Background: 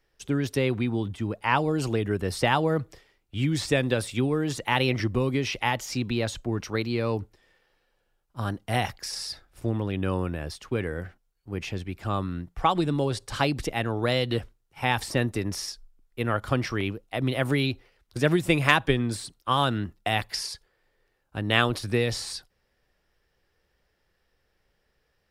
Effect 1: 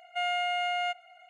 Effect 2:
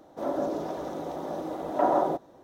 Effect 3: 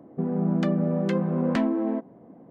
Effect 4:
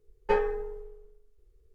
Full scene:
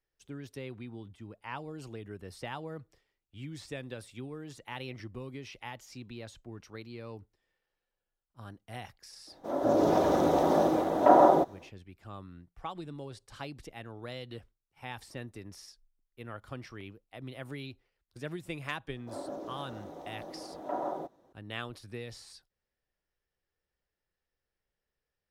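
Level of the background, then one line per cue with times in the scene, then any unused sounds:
background -17 dB
9.27 add 2 -5.5 dB + AGC gain up to 16 dB
18.9 add 2 -11 dB
not used: 1, 3, 4

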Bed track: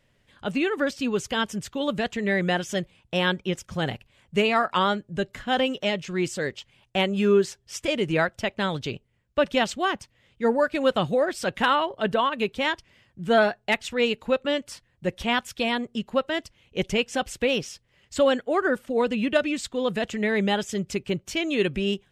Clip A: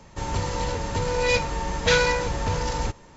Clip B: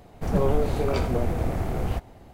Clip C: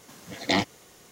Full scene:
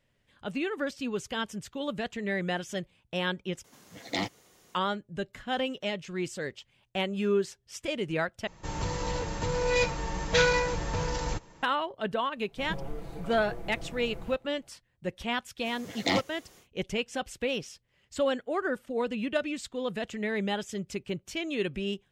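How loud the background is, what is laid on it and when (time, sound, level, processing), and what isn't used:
bed track -7 dB
3.64 replace with C -7.5 dB
8.47 replace with A -5 dB + comb 6.2 ms, depth 31%
12.36 add B -17.5 dB + comb 6 ms, depth 91%
15.57 add C -3.5 dB, fades 0.10 s

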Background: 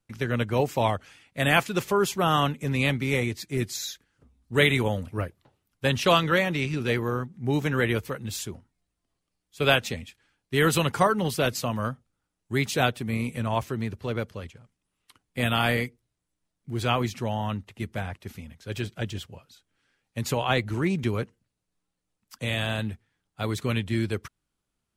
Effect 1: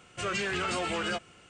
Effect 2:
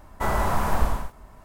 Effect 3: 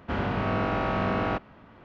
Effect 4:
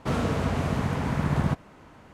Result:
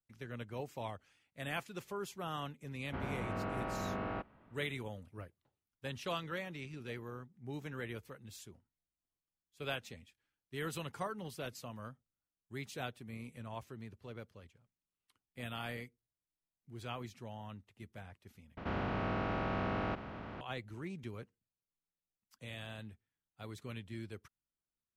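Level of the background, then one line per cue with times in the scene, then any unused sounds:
background -18.5 dB
2.84 add 3 -12 dB + Bessel low-pass 3000 Hz
18.57 replace with 3 -11.5 dB + per-bin compression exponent 0.4
not used: 1, 2, 4

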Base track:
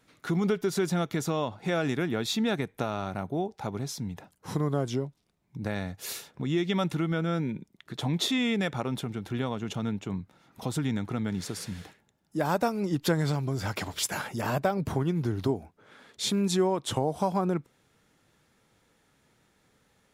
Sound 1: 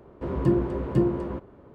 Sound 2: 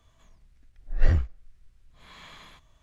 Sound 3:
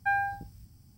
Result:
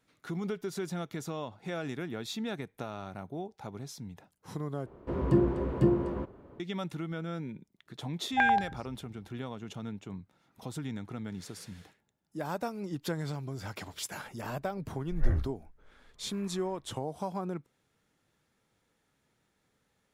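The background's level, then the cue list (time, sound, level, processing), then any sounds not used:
base track -8.5 dB
4.86 replace with 1 -2.5 dB
8.31 add 3 -2.5 dB + stepped low-pass 11 Hz 690–5200 Hz
14.21 add 2 -7 dB + LPF 1900 Hz 24 dB/oct

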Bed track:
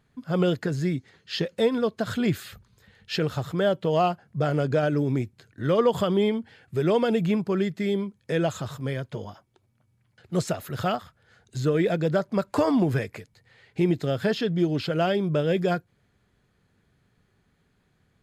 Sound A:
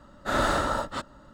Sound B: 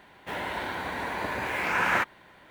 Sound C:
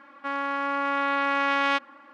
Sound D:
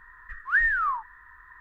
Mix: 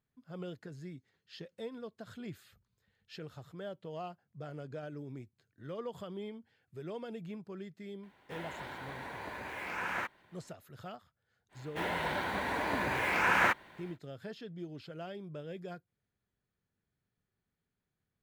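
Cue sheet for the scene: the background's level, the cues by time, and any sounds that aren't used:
bed track -20 dB
8.03 add B -11.5 dB
11.49 add B -2 dB, fades 0.10 s
not used: A, C, D

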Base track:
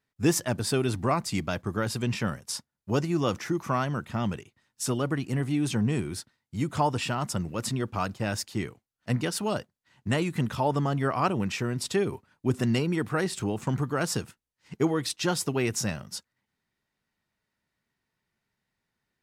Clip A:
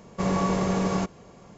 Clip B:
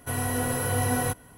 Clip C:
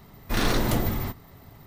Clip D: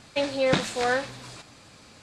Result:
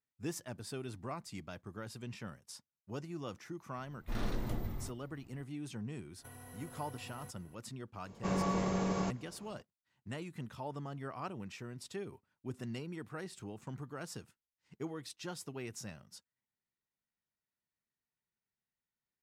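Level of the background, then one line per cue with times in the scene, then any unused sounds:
base track -16.5 dB
3.78 add C -17.5 dB + tilt -1.5 dB/oct
6.18 add B -14 dB + compressor 12:1, threshold -34 dBFS
8.05 add A -8.5 dB
not used: D

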